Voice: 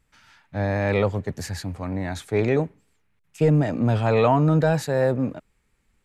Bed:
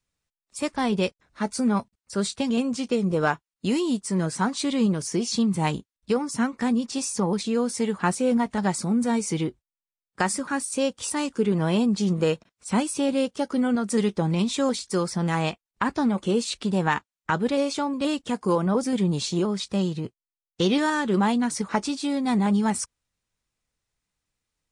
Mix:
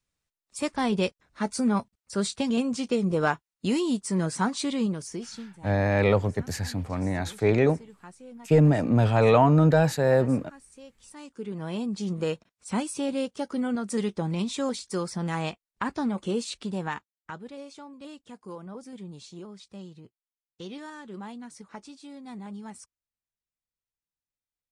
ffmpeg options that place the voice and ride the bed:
ffmpeg -i stem1.wav -i stem2.wav -filter_complex "[0:a]adelay=5100,volume=0dB[link_01];[1:a]volume=17dB,afade=type=out:start_time=4.5:duration=1:silence=0.0794328,afade=type=in:start_time=11.02:duration=1.36:silence=0.11885,afade=type=out:start_time=16.4:duration=1.05:silence=0.223872[link_02];[link_01][link_02]amix=inputs=2:normalize=0" out.wav

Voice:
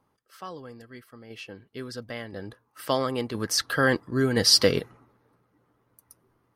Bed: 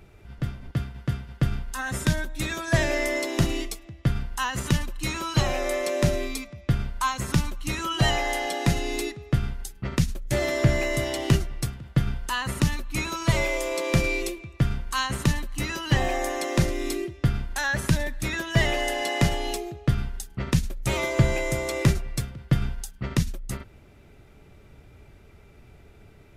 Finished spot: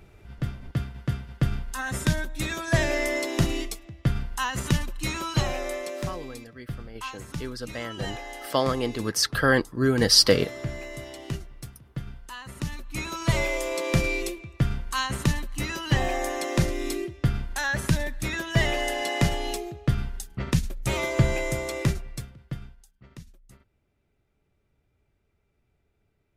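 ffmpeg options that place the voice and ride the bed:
ffmpeg -i stem1.wav -i stem2.wav -filter_complex "[0:a]adelay=5650,volume=1.5dB[link_01];[1:a]volume=10.5dB,afade=type=out:start_time=5.2:duration=0.96:silence=0.266073,afade=type=in:start_time=12.51:duration=0.82:silence=0.281838,afade=type=out:start_time=21.44:duration=1.33:silence=0.1[link_02];[link_01][link_02]amix=inputs=2:normalize=0" out.wav

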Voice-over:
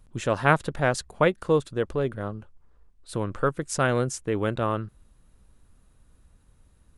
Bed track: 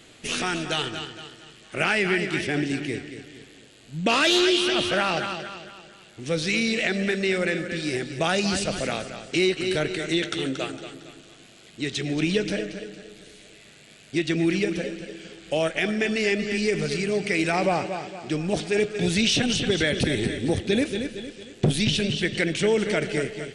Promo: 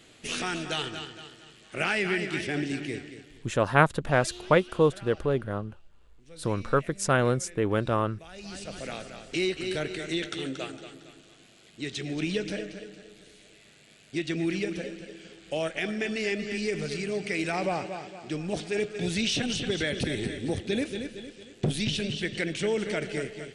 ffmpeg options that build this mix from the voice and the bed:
ffmpeg -i stem1.wav -i stem2.wav -filter_complex "[0:a]adelay=3300,volume=0dB[link_01];[1:a]volume=14dB,afade=type=out:start_time=3.03:duration=0.65:silence=0.1,afade=type=in:start_time=8.31:duration=0.89:silence=0.11885[link_02];[link_01][link_02]amix=inputs=2:normalize=0" out.wav

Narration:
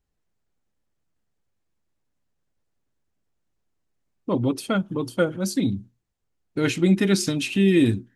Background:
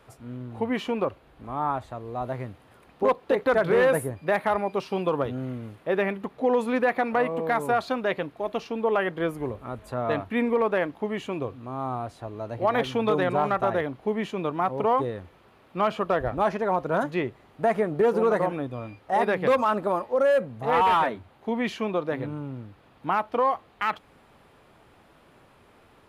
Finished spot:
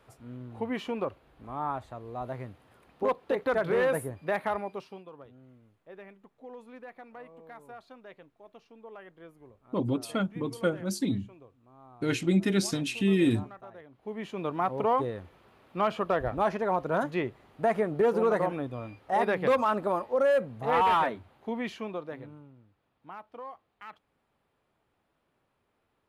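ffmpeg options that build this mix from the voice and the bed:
ffmpeg -i stem1.wav -i stem2.wav -filter_complex "[0:a]adelay=5450,volume=-6dB[link_01];[1:a]volume=14.5dB,afade=type=out:start_time=4.47:duration=0.57:silence=0.133352,afade=type=in:start_time=13.89:duration=0.66:silence=0.1,afade=type=out:start_time=21.04:duration=1.49:silence=0.149624[link_02];[link_01][link_02]amix=inputs=2:normalize=0" out.wav

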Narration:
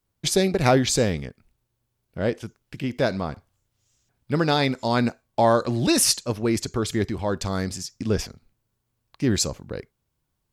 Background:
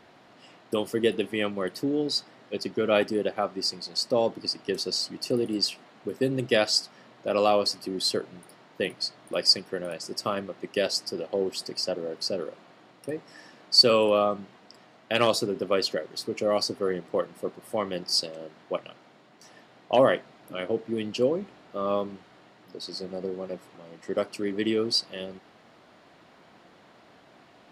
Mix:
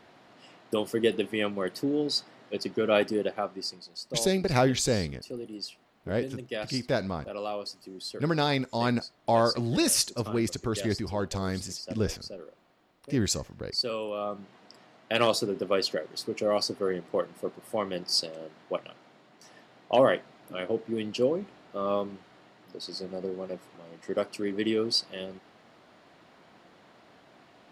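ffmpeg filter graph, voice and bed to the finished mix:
ffmpeg -i stem1.wav -i stem2.wav -filter_complex "[0:a]adelay=3900,volume=-5dB[link_01];[1:a]volume=9.5dB,afade=type=out:start_time=3.15:duration=0.77:silence=0.281838,afade=type=in:start_time=14.16:duration=0.45:silence=0.298538[link_02];[link_01][link_02]amix=inputs=2:normalize=0" out.wav

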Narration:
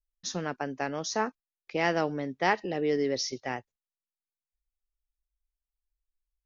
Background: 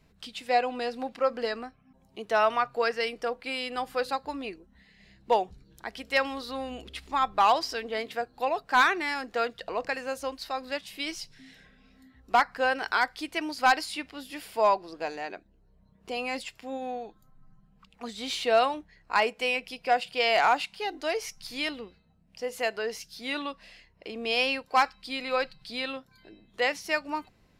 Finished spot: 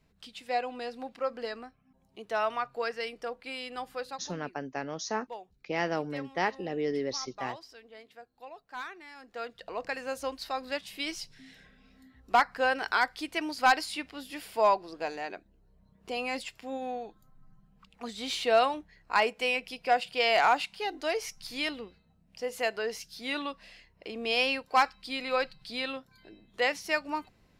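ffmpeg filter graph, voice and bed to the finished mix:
ffmpeg -i stem1.wav -i stem2.wav -filter_complex "[0:a]adelay=3950,volume=-3.5dB[link_01];[1:a]volume=11.5dB,afade=type=out:start_time=3.83:duration=0.64:silence=0.237137,afade=type=in:start_time=9.13:duration=1.12:silence=0.133352[link_02];[link_01][link_02]amix=inputs=2:normalize=0" out.wav

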